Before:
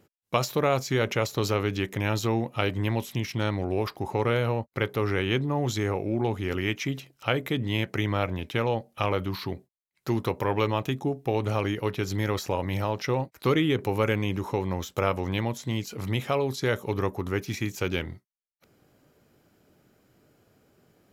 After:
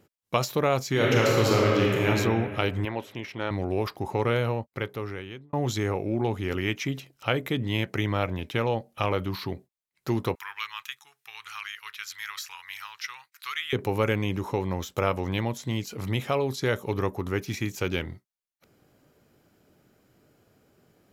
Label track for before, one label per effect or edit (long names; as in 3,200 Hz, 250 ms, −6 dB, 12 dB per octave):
0.900000	2.080000	thrown reverb, RT60 2.2 s, DRR −4 dB
2.850000	3.510000	bass and treble bass −12 dB, treble −14 dB
4.400000	5.530000	fade out
10.350000	13.730000	inverse Chebyshev high-pass filter stop band from 640 Hz